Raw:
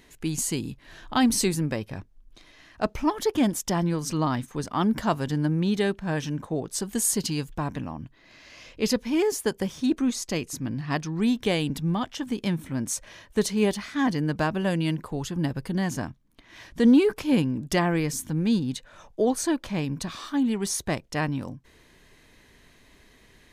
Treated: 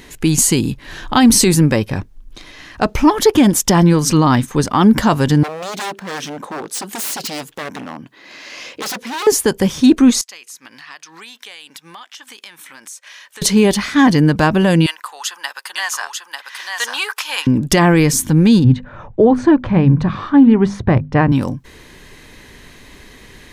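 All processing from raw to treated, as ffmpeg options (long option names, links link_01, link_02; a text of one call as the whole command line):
ffmpeg -i in.wav -filter_complex "[0:a]asettb=1/sr,asplit=3[link_01][link_02][link_03];[link_01]atrim=end=5.434[link_04];[link_02]atrim=start=5.43:end=9.27,asetpts=PTS-STARTPTS,afade=type=in:duration=0.004:curve=qsin,afade=type=out:start_time=3.836:duration=0.004:curve=qsin,aeval=exprs='0.0422*(abs(mod(val(0)/0.0422+3,4)-2)-1)':channel_layout=same,acompressor=threshold=-40dB:ratio=2:attack=3.2:release=140:knee=1:detection=peak,highpass=280[link_05];[link_03]atrim=start=9.266[link_06];[link_04][link_05]acrossfade=duration=0.004:curve1=hsin:curve2=qsin[link_07];[link_07][link_06]acrossfade=duration=0.004:curve1=qsin:curve2=hsin,asettb=1/sr,asplit=3[link_08][link_09][link_10];[link_08]atrim=end=10.214[link_11];[link_09]atrim=start=10.21:end=13.42,asetpts=PTS-STARTPTS,afade=type=in:duration=0.004:curve=qsin,afade=type=out:start_time=3.206:duration=0.004:curve=qsin,highpass=1300,acompressor=threshold=-50dB:ratio=4:attack=3.2:release=140:knee=1:detection=peak[link_12];[link_10]atrim=start=13.416[link_13];[link_11][link_12]acrossfade=duration=0.004:curve1=hsin:curve2=qsin[link_14];[link_14][link_13]acrossfade=duration=0.004:curve1=qsin:curve2=hsin,asettb=1/sr,asplit=3[link_15][link_16][link_17];[link_15]atrim=end=14.864[link_18];[link_16]atrim=start=14.86:end=17.47,asetpts=PTS-STARTPTS,afade=type=in:duration=0.004:curve=qsin,afade=type=out:start_time=2.606:duration=0.004:curve=qsin,highpass=frequency=970:width=0.5412,highpass=frequency=970:width=1.3066,bandreject=frequency=2200:width=13,aecho=1:1:894:0.631,atrim=end_sample=115101[link_19];[link_17]atrim=start=17.466[link_20];[link_18][link_19]acrossfade=duration=0.004:curve1=hsin:curve2=qsin[link_21];[link_21][link_20]acrossfade=duration=0.004:curve1=qsin:curve2=hsin,asettb=1/sr,asplit=3[link_22][link_23][link_24];[link_22]atrim=end=18.644[link_25];[link_23]atrim=start=18.64:end=21.32,asetpts=PTS-STARTPTS,afade=type=in:duration=0.004:curve=qsin,afade=type=out:start_time=2.676:duration=0.004:curve=qsin,lowpass=1600,equalizer=frequency=110:width=1.8:gain=13.5,bandreject=frequency=50:width_type=h:width=6,bandreject=frequency=100:width_type=h:width=6,bandreject=frequency=150:width_type=h:width=6,bandreject=frequency=200:width_type=h:width=6,bandreject=frequency=250:width_type=h:width=6[link_26];[link_24]atrim=start=21.316[link_27];[link_25][link_26]acrossfade=duration=0.004:curve1=hsin:curve2=qsin[link_28];[link_28][link_27]acrossfade=duration=0.004:curve1=qsin:curve2=hsin,bandreject=frequency=660:width=12,alimiter=level_in=16dB:limit=-1dB:release=50:level=0:latency=1,volume=-1dB" out.wav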